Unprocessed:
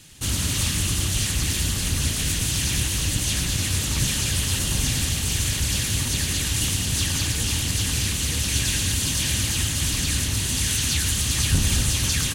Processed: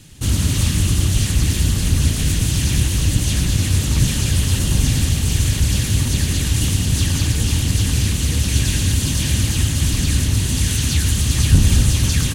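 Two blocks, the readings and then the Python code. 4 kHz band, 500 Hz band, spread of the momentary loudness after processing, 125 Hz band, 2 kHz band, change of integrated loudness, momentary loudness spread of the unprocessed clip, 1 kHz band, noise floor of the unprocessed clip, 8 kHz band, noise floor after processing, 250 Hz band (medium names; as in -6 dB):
0.0 dB, +5.0 dB, 2 LU, +9.0 dB, +0.5 dB, +4.5 dB, 2 LU, +2.0 dB, -26 dBFS, 0.0 dB, -22 dBFS, +8.0 dB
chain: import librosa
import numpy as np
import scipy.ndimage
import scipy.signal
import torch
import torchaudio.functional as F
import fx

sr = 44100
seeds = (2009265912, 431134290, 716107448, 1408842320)

y = fx.low_shelf(x, sr, hz=480.0, db=9.5)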